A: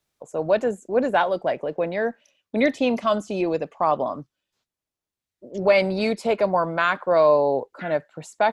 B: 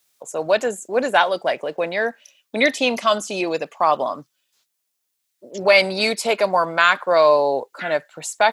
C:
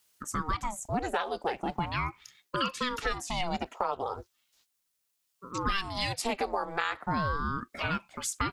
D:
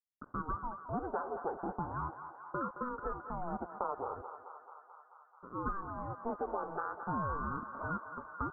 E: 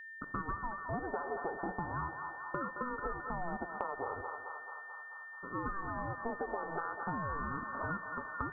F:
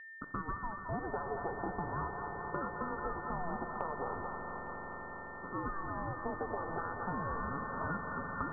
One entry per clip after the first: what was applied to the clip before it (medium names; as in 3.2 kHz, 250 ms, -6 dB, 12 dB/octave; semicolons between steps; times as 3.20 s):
tilt EQ +3.5 dB/octave; trim +4.5 dB
compression 6:1, threshold -25 dBFS, peak gain reduction 15 dB; ring modulator with a swept carrier 470 Hz, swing 70%, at 0.38 Hz
bit crusher 7-bit; rippled Chebyshev low-pass 1.5 kHz, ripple 3 dB; on a send: thinning echo 218 ms, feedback 83%, high-pass 600 Hz, level -8 dB; on the sum: trim -4.5 dB
compression, threshold -38 dBFS, peak gain reduction 7.5 dB; whistle 1.8 kHz -50 dBFS; simulated room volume 2300 m³, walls furnished, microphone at 0.3 m; trim +4 dB
distance through air 190 m; echo with a slow build-up 86 ms, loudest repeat 8, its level -15.5 dB